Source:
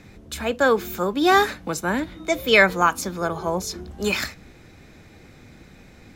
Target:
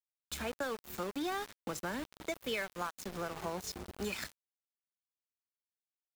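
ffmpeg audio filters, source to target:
-af "acompressor=threshold=-28dB:ratio=6,aeval=exprs='val(0)*gte(abs(val(0)),0.0211)':c=same,volume=-7dB"

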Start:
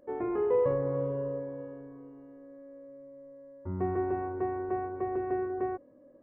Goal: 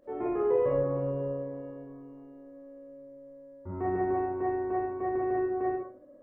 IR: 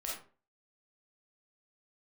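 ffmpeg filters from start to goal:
-filter_complex "[1:a]atrim=start_sample=2205[a];[0:a][a]afir=irnorm=-1:irlink=0,volume=1.5dB"

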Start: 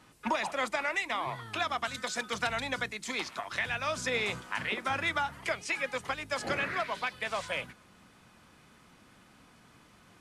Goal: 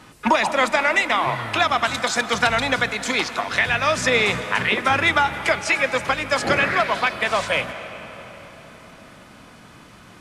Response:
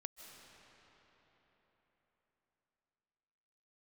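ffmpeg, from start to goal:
-filter_complex "[0:a]asplit=2[a][b];[1:a]atrim=start_sample=2205,highshelf=f=8.4k:g=-9[c];[b][c]afir=irnorm=-1:irlink=0,volume=3dB[d];[a][d]amix=inputs=2:normalize=0,volume=8dB"

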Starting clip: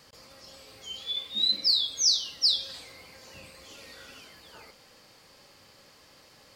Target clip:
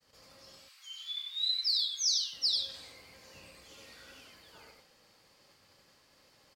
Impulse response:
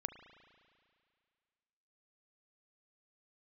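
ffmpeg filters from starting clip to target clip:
-filter_complex "[0:a]asettb=1/sr,asplit=3[a][b][c];[a]atrim=end=0.594[d];[b]atrim=start=0.59:end=2.33,asetpts=PTS-STARTPTS,afade=t=in:d=0.004:c=qsin,afade=t=out:st=1.736:d=0.004:c=qsin,highpass=f=1.2k:w=0.5412,highpass=f=1.2k:w=1.3066[e];[c]atrim=start=2.326[f];[d][e]acrossfade=d=0.004:c1=hsin:c2=qsin[g];[g][f]acrossfade=d=0.004:c1=qsin:c2=hsin,aecho=1:1:94:0.668,agate=range=-33dB:threshold=-51dB:ratio=3:detection=peak,volume=-7dB"

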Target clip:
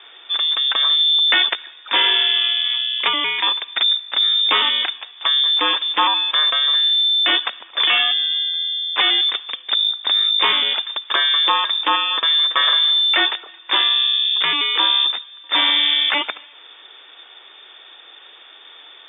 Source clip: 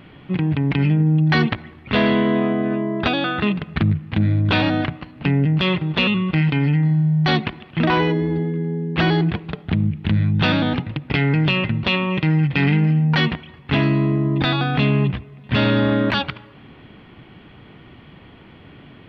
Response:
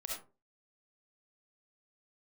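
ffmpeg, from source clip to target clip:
-af "highshelf=f=2.1k:g=7.5,lowpass=f=3.1k:t=q:w=0.5098,lowpass=f=3.1k:t=q:w=0.6013,lowpass=f=3.1k:t=q:w=0.9,lowpass=f=3.1k:t=q:w=2.563,afreqshift=-3700,highpass=f=240:w=0.5412,highpass=f=240:w=1.3066"

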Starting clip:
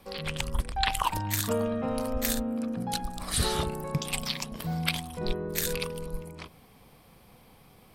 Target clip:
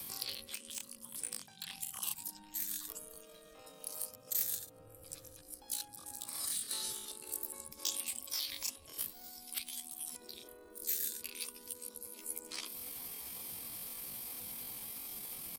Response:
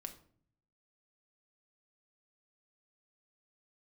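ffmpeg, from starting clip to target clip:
-filter_complex "[0:a]acrossover=split=89|180|3800[a][b][c][d];[a]acompressor=threshold=-43dB:ratio=4[e];[b]acompressor=threshold=-41dB:ratio=4[f];[c]acompressor=threshold=-45dB:ratio=4[g];[d]acompressor=threshold=-46dB:ratio=4[h];[e][f][g][h]amix=inputs=4:normalize=0,bass=f=250:g=13,treble=f=4k:g=4,asplit=2[i][j];[j]adelay=380,lowpass=f=2.2k:p=1,volume=-20.5dB,asplit=2[k][l];[l]adelay=380,lowpass=f=2.2k:p=1,volume=0.21[m];[i][k][m]amix=inputs=3:normalize=0,acrossover=split=360|1400[n][o][p];[p]volume=33.5dB,asoftclip=hard,volume=-33.5dB[q];[n][o][q]amix=inputs=3:normalize=0,atempo=0.51,areverse,acompressor=threshold=-37dB:ratio=10,areverse,adynamicequalizer=threshold=0.002:dfrequency=120:dqfactor=2.3:tfrequency=120:tqfactor=2.3:attack=5:release=100:ratio=0.375:range=3:mode=cutabove:tftype=bell,afftfilt=real='re*lt(hypot(re,im),0.02)':imag='im*lt(hypot(re,im),0.02)':win_size=1024:overlap=0.75,crystalizer=i=7:c=0,volume=-2.5dB"

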